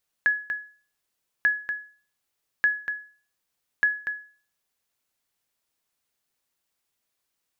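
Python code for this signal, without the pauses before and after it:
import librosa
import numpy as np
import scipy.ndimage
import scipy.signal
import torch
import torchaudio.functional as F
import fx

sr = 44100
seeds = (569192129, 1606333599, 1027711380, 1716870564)

y = fx.sonar_ping(sr, hz=1690.0, decay_s=0.41, every_s=1.19, pings=4, echo_s=0.24, echo_db=-8.0, level_db=-13.5)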